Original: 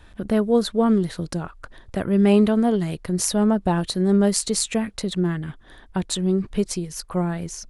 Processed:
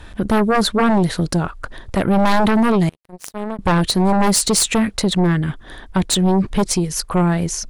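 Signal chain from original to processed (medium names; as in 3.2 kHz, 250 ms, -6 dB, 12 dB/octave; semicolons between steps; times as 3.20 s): 2.89–3.59 s: power-law waveshaper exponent 3; sine folder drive 15 dB, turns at -2.5 dBFS; trim -8.5 dB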